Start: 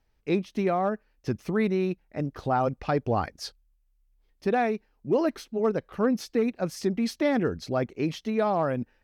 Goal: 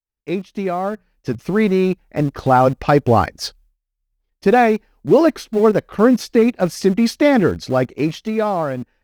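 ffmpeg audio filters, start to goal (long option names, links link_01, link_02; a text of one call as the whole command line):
ffmpeg -i in.wav -filter_complex "[0:a]asettb=1/sr,asplit=3[link_01][link_02][link_03];[link_01]atrim=end=0.924[link_04];[link_02]atrim=start=0.92:end=1.39,asetpts=PTS-STARTPTS,afade=type=in:duration=0.004:curve=qsin,afade=type=out:start_time=0.466:duration=0.004:curve=qsin,bandreject=frequency=60:width_type=h:width=6,bandreject=frequency=120:width_type=h:width=6,bandreject=frequency=180:width_type=h:width=6[link_05];[link_03]atrim=start=1.386[link_06];[link_04][link_05]acrossfade=duration=0.004:curve1=hsin:curve2=qsin[link_07];[link_07][link_06]acrossfade=duration=0.004:curve1=qsin:curve2=hsin,asplit=2[link_08][link_09];[link_09]aeval=exprs='val(0)*gte(abs(val(0)),0.0299)':channel_layout=same,volume=-12dB[link_10];[link_08][link_10]amix=inputs=2:normalize=0,agate=range=-33dB:threshold=-55dB:ratio=3:detection=peak,dynaudnorm=framelen=440:gausssize=7:maxgain=11dB,volume=1dB" out.wav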